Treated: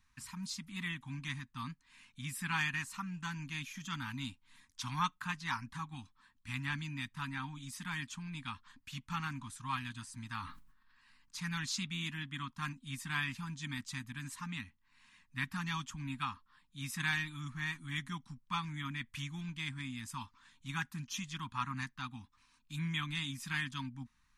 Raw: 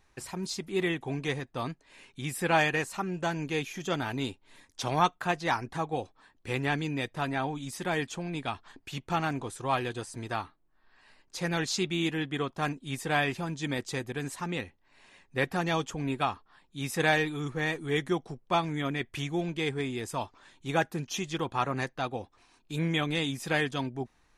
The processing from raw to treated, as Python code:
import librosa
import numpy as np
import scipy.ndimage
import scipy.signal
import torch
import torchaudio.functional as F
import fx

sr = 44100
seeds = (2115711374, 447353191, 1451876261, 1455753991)

y = scipy.signal.sosfilt(scipy.signal.ellip(3, 1.0, 50, [250.0, 1000.0], 'bandstop', fs=sr, output='sos'), x)
y = fx.sustainer(y, sr, db_per_s=68.0, at=(10.37, 11.66))
y = y * 10.0 ** (-5.5 / 20.0)